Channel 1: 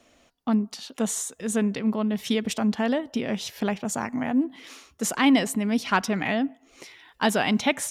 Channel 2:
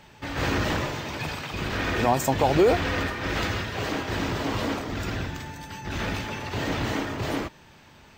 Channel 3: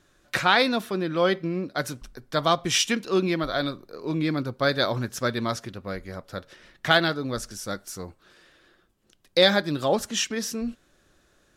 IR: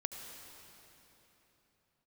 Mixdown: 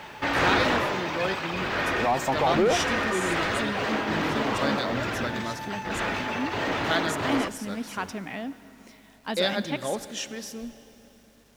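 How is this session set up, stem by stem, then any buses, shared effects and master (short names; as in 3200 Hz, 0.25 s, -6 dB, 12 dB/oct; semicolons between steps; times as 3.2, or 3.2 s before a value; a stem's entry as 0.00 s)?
-12.0 dB, 2.05 s, send -8 dB, dry
+1.0 dB, 0.00 s, no send, overdrive pedal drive 20 dB, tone 1800 Hz, clips at -8.5 dBFS; auto duck -7 dB, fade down 1.05 s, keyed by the third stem
-10.5 dB, 0.00 s, send -6 dB, hum 50 Hz, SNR 32 dB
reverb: on, pre-delay 67 ms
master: bit-crush 10-bit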